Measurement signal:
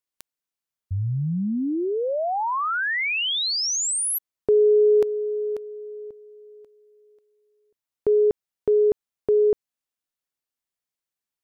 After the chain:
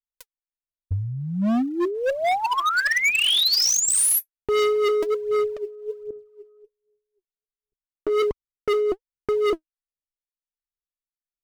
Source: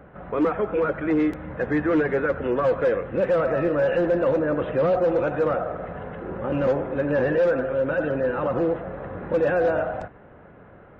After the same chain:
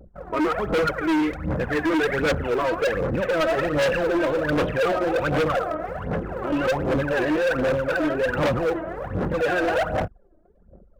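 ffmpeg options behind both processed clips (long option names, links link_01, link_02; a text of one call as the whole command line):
ffmpeg -i in.wav -af "anlmdn=1,aphaser=in_gain=1:out_gain=1:delay=3.2:decay=0.76:speed=1.3:type=sinusoidal,volume=19dB,asoftclip=hard,volume=-19dB,adynamicequalizer=threshold=0.0158:dfrequency=1500:dqfactor=0.7:tfrequency=1500:tqfactor=0.7:attack=5:release=100:ratio=0.45:range=1.5:mode=boostabove:tftype=highshelf" out.wav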